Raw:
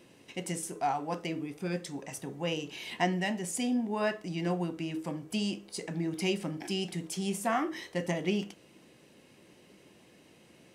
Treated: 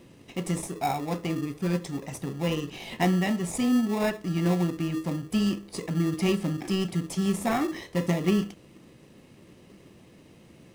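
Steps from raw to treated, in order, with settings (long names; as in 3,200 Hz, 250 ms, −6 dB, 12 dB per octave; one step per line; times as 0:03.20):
low-shelf EQ 150 Hz +11.5 dB
in parallel at −4.5 dB: decimation without filtering 29×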